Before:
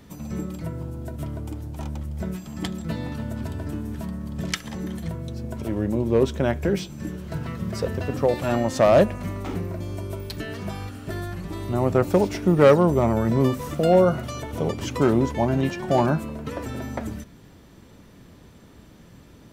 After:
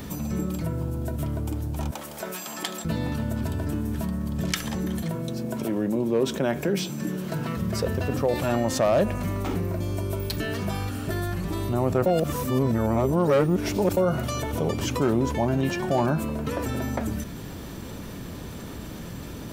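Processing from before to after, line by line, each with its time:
1.91–2.85 HPF 610 Hz
5.02–7.57 HPF 140 Hz 24 dB/oct
12.06–13.97 reverse
whole clip: high shelf 12000 Hz +9 dB; notch 2000 Hz, Q 26; fast leveller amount 50%; gain -7 dB

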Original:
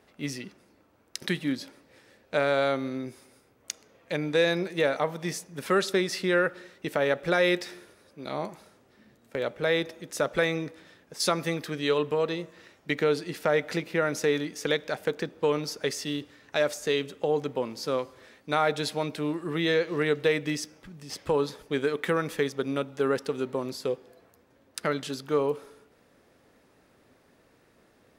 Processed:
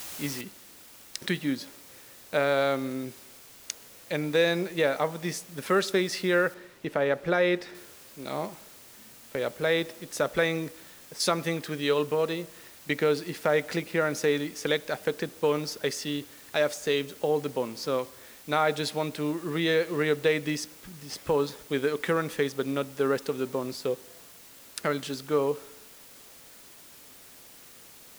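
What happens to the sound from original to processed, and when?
0.41 noise floor step -40 dB -51 dB
6.54–7.75 high shelf 4100 Hz -12 dB

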